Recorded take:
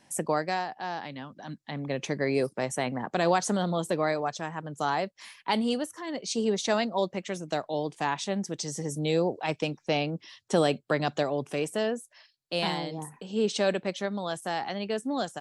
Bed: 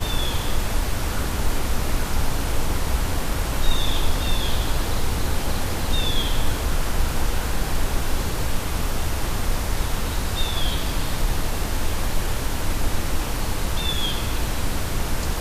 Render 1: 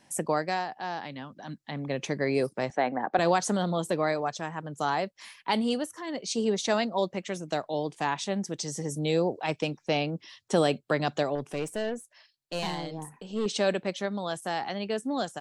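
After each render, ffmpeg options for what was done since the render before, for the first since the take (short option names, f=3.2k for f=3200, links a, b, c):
-filter_complex "[0:a]asettb=1/sr,asplit=3[a][b][c];[a]atrim=end=2.704[d];[b]atrim=start=2.7:end=3.19,asetpts=PTS-STARTPTS,afade=t=in:d=0.004:c=qsin,afade=t=out:st=0.486:d=0.004:c=qsin,highpass=240,equalizer=f=300:t=q:w=4:g=4,equalizer=f=540:t=q:w=4:g=3,equalizer=f=770:t=q:w=4:g=8,equalizer=f=1.6k:t=q:w=4:g=5,equalizer=f=3k:t=q:w=4:g=-7,lowpass=f=4k:w=0.5412,lowpass=f=4k:w=1.3066[e];[c]atrim=start=3.186[f];[d][e]acrossfade=d=0.004:c1=hsin:c2=qsin[g];[g][f]acrossfade=d=0.004:c1=qsin:c2=hsin,asettb=1/sr,asplit=3[h][i][j];[h]atrim=end=11.354[k];[i]atrim=start=11.35:end=13.46,asetpts=PTS-STARTPTS,afade=t=in:d=0.004:c=qsin,afade=t=out:st=2.106:d=0.004:c=qsin,aeval=exprs='(tanh(15.8*val(0)+0.45)-tanh(0.45))/15.8':c=same[l];[j]atrim=start=13.456[m];[k][l]acrossfade=d=0.004:c1=hsin:c2=qsin[n];[n][m]acrossfade=d=0.004:c1=qsin:c2=hsin"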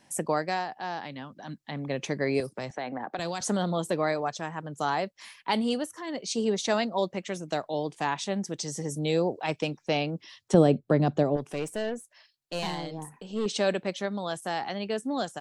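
-filter_complex "[0:a]asettb=1/sr,asplit=3[a][b][c];[a]atrim=end=2.404[d];[b]atrim=start=2.4:end=3.41,asetpts=PTS-STARTPTS,afade=t=in:d=0.004:c=qsin,afade=t=out:st=1.006:d=0.004:c=qsin,acrossover=split=140|3000[e][f][g];[f]acompressor=threshold=-30dB:ratio=6:attack=3.2:release=140:knee=2.83:detection=peak[h];[e][h][g]amix=inputs=3:normalize=0[i];[c]atrim=start=3.406[j];[d][i]acrossfade=d=0.004:c1=hsin:c2=qsin[k];[k][j]acrossfade=d=0.004:c1=qsin:c2=hsin,asettb=1/sr,asplit=3[l][m][n];[l]atrim=end=10.544[o];[m]atrim=start=10.54:end=11.37,asetpts=PTS-STARTPTS,afade=t=in:d=0.004:c=qsin,afade=t=out:st=0.826:d=0.004:c=qsin,tiltshelf=f=760:g=9.5[p];[n]atrim=start=11.366[q];[o][p]acrossfade=d=0.004:c1=hsin:c2=qsin[r];[r][q]acrossfade=d=0.004:c1=qsin:c2=hsin"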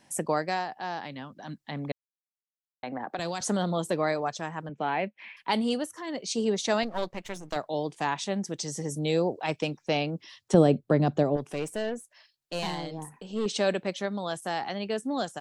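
-filter_complex "[0:a]asettb=1/sr,asplit=3[a][b][c];[a]atrim=end=4.694[d];[b]atrim=start=4.69:end=5.37,asetpts=PTS-STARTPTS,afade=t=in:d=0.004:c=qsin,afade=t=out:st=0.676:d=0.004:c=qsin,highpass=150,equalizer=f=210:t=q:w=4:g=6,equalizer=f=1.2k:t=q:w=4:g=-8,equalizer=f=2.4k:t=q:w=4:g=10,lowpass=f=2.9k:w=0.5412,lowpass=f=2.9k:w=1.3066[e];[c]atrim=start=5.366[f];[d][e]acrossfade=d=0.004:c1=hsin:c2=qsin[g];[g][f]acrossfade=d=0.004:c1=qsin:c2=hsin,asettb=1/sr,asplit=3[h][i][j];[h]atrim=end=6.834[k];[i]atrim=start=6.83:end=7.56,asetpts=PTS-STARTPTS,afade=t=in:d=0.004:c=qsin,afade=t=out:st=0.726:d=0.004:c=qsin,aeval=exprs='if(lt(val(0),0),0.251*val(0),val(0))':c=same[l];[j]atrim=start=7.556[m];[k][l]acrossfade=d=0.004:c1=hsin:c2=qsin[n];[n][m]acrossfade=d=0.004:c1=qsin:c2=hsin,asplit=3[o][p][q];[o]atrim=end=1.92,asetpts=PTS-STARTPTS,afade=t=out:st=1.916:d=0.004:c=hsin[r];[p]atrim=start=1.92:end=2.83,asetpts=PTS-STARTPTS,volume=0[s];[q]atrim=start=2.83,asetpts=PTS-STARTPTS,afade=t=in:d=0.004:c=hsin[t];[r][s][t]concat=n=3:v=0:a=1"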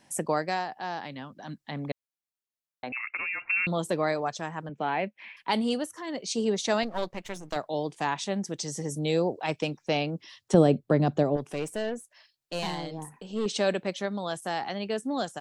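-filter_complex "[0:a]asettb=1/sr,asplit=3[a][b][c];[a]atrim=end=2.924[d];[b]atrim=start=2.92:end=3.67,asetpts=PTS-STARTPTS,afade=t=in:d=0.004:c=qsin,afade=t=out:st=0.746:d=0.004:c=qsin,lowpass=f=2.5k:t=q:w=0.5098,lowpass=f=2.5k:t=q:w=0.6013,lowpass=f=2.5k:t=q:w=0.9,lowpass=f=2.5k:t=q:w=2.563,afreqshift=-2900[e];[c]atrim=start=3.666[f];[d][e]acrossfade=d=0.004:c1=hsin:c2=qsin[g];[g][f]acrossfade=d=0.004:c1=qsin:c2=hsin"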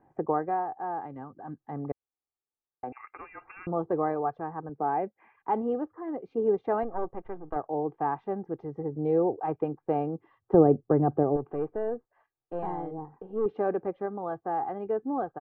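-af "lowpass=f=1.2k:w=0.5412,lowpass=f=1.2k:w=1.3066,aecho=1:1:2.5:0.55"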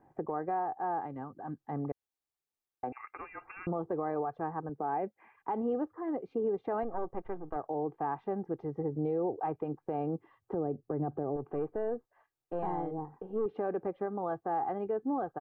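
-af "acompressor=threshold=-26dB:ratio=6,alimiter=level_in=0.5dB:limit=-24dB:level=0:latency=1:release=73,volume=-0.5dB"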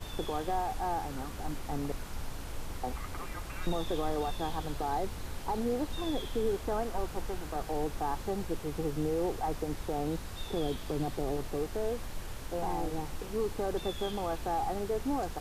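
-filter_complex "[1:a]volume=-17dB[a];[0:a][a]amix=inputs=2:normalize=0"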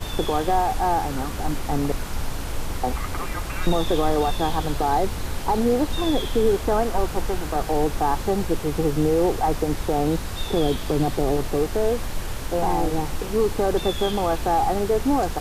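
-af "volume=11.5dB"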